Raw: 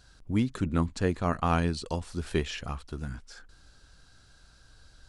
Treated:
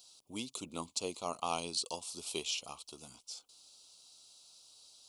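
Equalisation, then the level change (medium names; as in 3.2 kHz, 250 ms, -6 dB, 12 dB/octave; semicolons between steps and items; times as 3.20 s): high-pass 450 Hz 6 dB/octave; Butterworth band-stop 1.7 kHz, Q 0.98; tilt EQ +3.5 dB/octave; -3.0 dB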